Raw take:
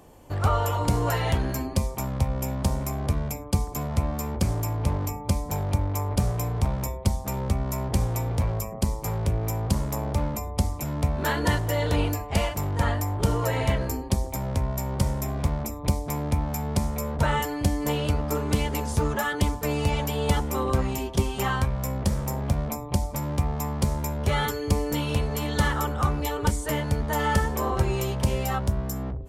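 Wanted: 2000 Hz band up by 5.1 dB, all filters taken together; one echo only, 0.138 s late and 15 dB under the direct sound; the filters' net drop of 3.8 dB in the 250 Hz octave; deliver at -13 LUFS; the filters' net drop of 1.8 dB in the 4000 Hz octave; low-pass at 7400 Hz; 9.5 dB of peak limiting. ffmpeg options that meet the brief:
-af "lowpass=7.4k,equalizer=f=250:t=o:g=-5.5,equalizer=f=2k:t=o:g=7.5,equalizer=f=4k:t=o:g=-6,alimiter=limit=-19dB:level=0:latency=1,aecho=1:1:138:0.178,volume=16.5dB"

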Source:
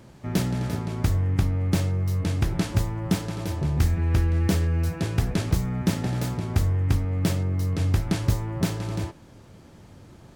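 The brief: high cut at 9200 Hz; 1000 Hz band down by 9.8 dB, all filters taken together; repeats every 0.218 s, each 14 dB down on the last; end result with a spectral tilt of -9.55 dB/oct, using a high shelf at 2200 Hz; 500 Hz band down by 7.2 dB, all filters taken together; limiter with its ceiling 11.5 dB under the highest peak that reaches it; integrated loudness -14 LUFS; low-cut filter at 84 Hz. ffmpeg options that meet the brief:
-af "highpass=84,lowpass=9.2k,equalizer=f=500:t=o:g=-7.5,equalizer=f=1k:t=o:g=-8.5,highshelf=f=2.2k:g=-8.5,alimiter=limit=-23dB:level=0:latency=1,aecho=1:1:218|436:0.2|0.0399,volume=17.5dB"

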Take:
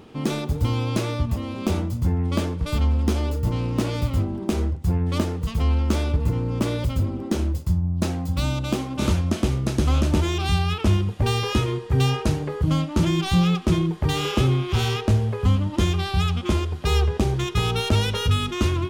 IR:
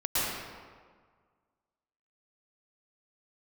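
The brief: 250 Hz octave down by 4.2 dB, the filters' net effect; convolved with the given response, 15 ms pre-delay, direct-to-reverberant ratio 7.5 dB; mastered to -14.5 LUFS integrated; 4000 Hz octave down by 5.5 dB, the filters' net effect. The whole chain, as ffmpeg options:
-filter_complex "[0:a]equalizer=f=250:t=o:g=-6.5,equalizer=f=4k:t=o:g=-7.5,asplit=2[a][b];[1:a]atrim=start_sample=2205,adelay=15[c];[b][c]afir=irnorm=-1:irlink=0,volume=-18.5dB[d];[a][d]amix=inputs=2:normalize=0,volume=9dB"

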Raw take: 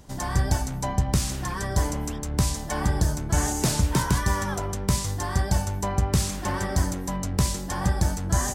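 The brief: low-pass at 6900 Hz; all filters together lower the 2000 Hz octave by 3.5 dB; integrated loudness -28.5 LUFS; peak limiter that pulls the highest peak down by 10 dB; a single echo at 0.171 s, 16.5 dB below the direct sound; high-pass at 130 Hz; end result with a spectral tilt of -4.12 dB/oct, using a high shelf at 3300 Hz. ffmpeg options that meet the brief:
-af "highpass=130,lowpass=6.9k,equalizer=f=2k:t=o:g=-5.5,highshelf=f=3.3k:g=3.5,alimiter=limit=-21dB:level=0:latency=1,aecho=1:1:171:0.15,volume=3dB"

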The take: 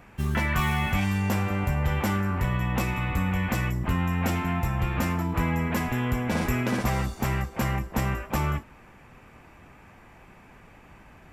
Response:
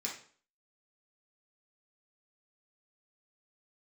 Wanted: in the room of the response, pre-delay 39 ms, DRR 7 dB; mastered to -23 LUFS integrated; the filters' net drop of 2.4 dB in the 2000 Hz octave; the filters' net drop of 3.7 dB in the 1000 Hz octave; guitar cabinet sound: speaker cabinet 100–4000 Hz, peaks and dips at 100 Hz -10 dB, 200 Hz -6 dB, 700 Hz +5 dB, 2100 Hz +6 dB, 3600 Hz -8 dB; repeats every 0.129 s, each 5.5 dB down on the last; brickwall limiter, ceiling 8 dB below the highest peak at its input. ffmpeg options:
-filter_complex "[0:a]equalizer=f=1k:t=o:g=-6,equalizer=f=2k:t=o:g=-4.5,alimiter=limit=-24dB:level=0:latency=1,aecho=1:1:129|258|387|516|645|774|903:0.531|0.281|0.149|0.079|0.0419|0.0222|0.0118,asplit=2[a][b];[1:a]atrim=start_sample=2205,adelay=39[c];[b][c]afir=irnorm=-1:irlink=0,volume=-8.5dB[d];[a][d]amix=inputs=2:normalize=0,highpass=100,equalizer=f=100:t=q:w=4:g=-10,equalizer=f=200:t=q:w=4:g=-6,equalizer=f=700:t=q:w=4:g=5,equalizer=f=2.1k:t=q:w=4:g=6,equalizer=f=3.6k:t=q:w=4:g=-8,lowpass=f=4k:w=0.5412,lowpass=f=4k:w=1.3066,volume=11dB"

